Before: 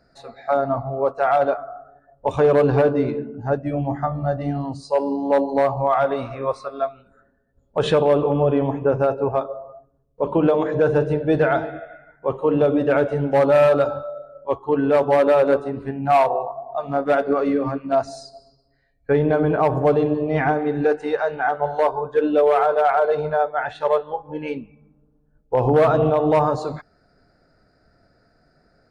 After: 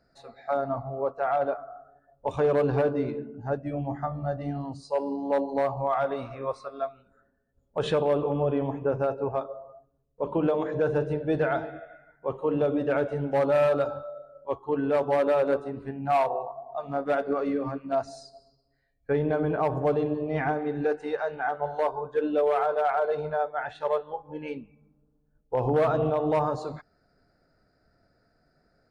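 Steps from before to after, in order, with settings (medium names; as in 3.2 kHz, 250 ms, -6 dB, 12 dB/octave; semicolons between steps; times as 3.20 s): 1.01–1.71 s: treble shelf 3.7 kHz -10 dB; trim -7.5 dB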